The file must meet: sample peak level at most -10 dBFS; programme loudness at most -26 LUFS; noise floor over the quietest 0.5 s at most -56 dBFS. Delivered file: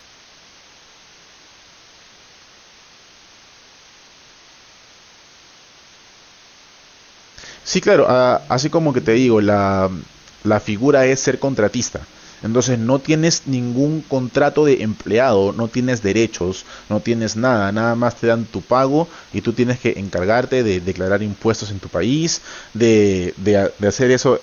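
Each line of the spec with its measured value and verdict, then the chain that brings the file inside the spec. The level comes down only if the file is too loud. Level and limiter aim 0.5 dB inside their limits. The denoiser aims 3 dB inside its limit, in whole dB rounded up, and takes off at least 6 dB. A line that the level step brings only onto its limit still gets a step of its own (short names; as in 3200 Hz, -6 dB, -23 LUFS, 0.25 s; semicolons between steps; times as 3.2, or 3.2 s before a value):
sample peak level -3.5 dBFS: fail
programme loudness -17.5 LUFS: fail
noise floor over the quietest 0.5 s -47 dBFS: fail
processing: denoiser 6 dB, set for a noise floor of -47 dBFS; gain -9 dB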